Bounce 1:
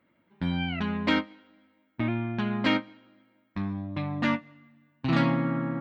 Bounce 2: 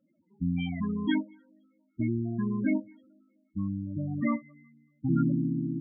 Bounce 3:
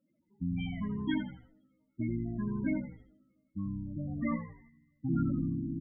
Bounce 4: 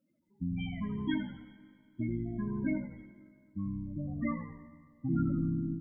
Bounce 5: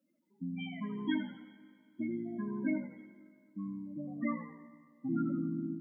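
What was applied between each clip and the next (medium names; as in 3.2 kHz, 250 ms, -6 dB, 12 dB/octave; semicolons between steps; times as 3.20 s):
loudest bins only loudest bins 8
frequency-shifting echo 83 ms, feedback 36%, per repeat -65 Hz, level -9 dB; trim -5 dB
Schroeder reverb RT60 2.2 s, combs from 33 ms, DRR 13 dB; endings held to a fixed fall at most 100 dB/s
high-pass 200 Hz 24 dB/octave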